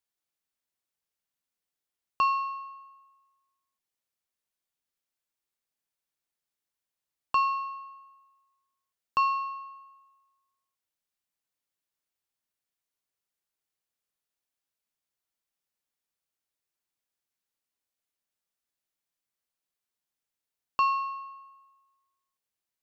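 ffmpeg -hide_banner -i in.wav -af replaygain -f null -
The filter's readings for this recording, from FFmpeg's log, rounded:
track_gain = +18.1 dB
track_peak = 0.116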